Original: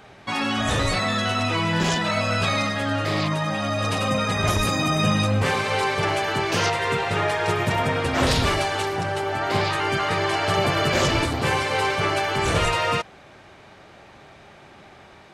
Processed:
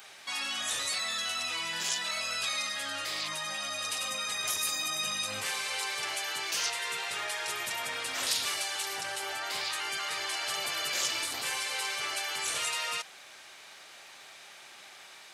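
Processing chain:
first difference
in parallel at −2 dB: compressor whose output falls as the input rises −46 dBFS, ratio −1

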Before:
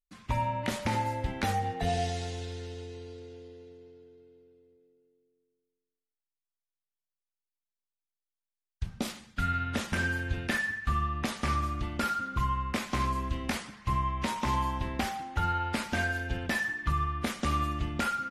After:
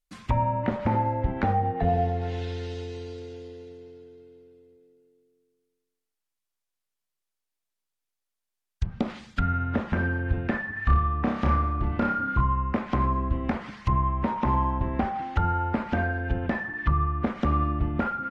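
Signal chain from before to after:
treble cut that deepens with the level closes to 1,100 Hz, closed at −29 dBFS
0:10.72–0:12.41: flutter between parallel walls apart 5.1 metres, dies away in 0.45 s
level +6.5 dB

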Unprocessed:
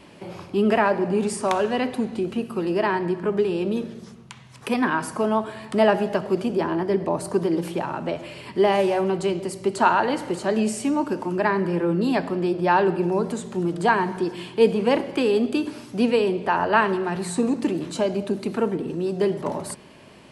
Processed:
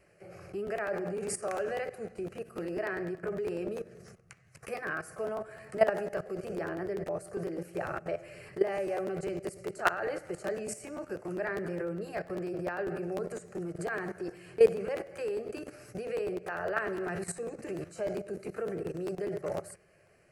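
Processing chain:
output level in coarse steps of 15 dB
phaser with its sweep stopped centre 950 Hz, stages 6
regular buffer underruns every 0.10 s, samples 512, repeat, from 0:00.66

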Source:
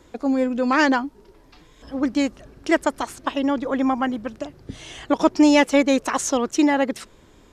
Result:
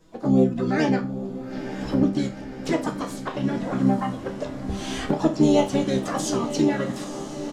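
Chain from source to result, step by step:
camcorder AGC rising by 16 dB per second
parametric band 2,400 Hz −12.5 dB 0.31 octaves
pitch-shifted copies added −12 semitones −8 dB, −5 semitones −5 dB, +5 semitones −12 dB
flanger swept by the level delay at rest 6.5 ms, full sweep at −10.5 dBFS
resonators tuned to a chord C2 minor, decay 0.29 s
on a send: feedback delay with all-pass diffusion 913 ms, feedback 63%, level −11 dB
on the sum: level +6 dB

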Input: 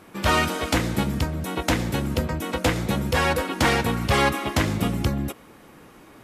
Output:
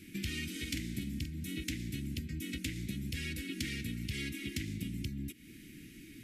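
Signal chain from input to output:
Chebyshev band-stop filter 310–2,100 Hz, order 3
downward compressor 5 to 1, threshold −37 dBFS, peak gain reduction 17 dB
0:00.51–0:01.64: double-tracking delay 47 ms −9 dB

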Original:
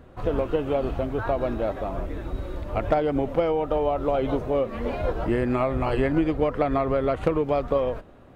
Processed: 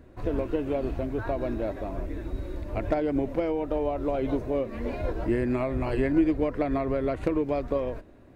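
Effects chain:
thirty-one-band graphic EQ 160 Hz −6 dB, 315 Hz +4 dB, 500 Hz −4 dB, 800 Hz −7 dB, 1,250 Hz −9 dB, 3,150 Hz −7 dB
level −2 dB

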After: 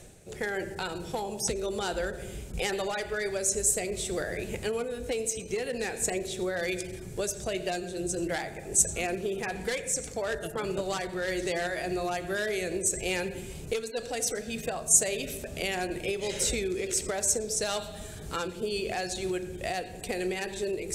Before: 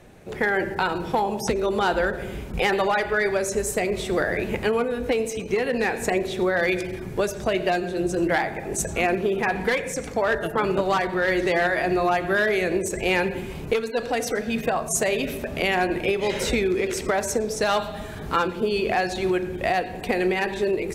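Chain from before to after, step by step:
reversed playback
upward compression, threshold −30 dBFS
reversed playback
octave-band graphic EQ 250/1,000/2,000/8,000 Hz −6/−9/−4/+12 dB
level −5 dB

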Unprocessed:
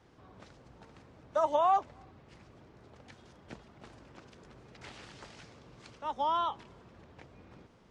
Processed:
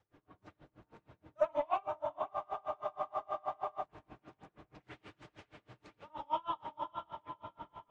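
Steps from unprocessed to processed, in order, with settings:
tape wow and flutter 20 cents
feedback delay with all-pass diffusion 519 ms, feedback 47%, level −6 dB
flanger 1.3 Hz, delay 1.2 ms, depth 8.9 ms, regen −50%
soft clipping −25.5 dBFS, distortion −17 dB
convolution reverb, pre-delay 48 ms, DRR −10 dB
frozen spectrum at 0:02.32, 1.50 s
tremolo with a sine in dB 6.3 Hz, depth 32 dB
level −6 dB

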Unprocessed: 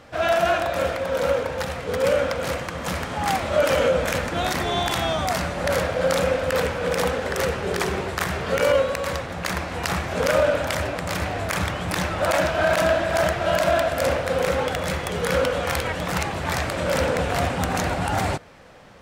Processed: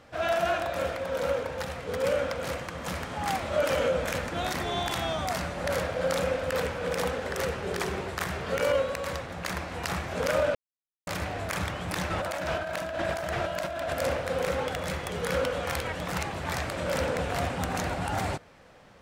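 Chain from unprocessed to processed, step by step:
0:10.55–0:11.07: silence
0:12.10–0:13.94: compressor whose output falls as the input rises −25 dBFS, ratio −1
level −6.5 dB

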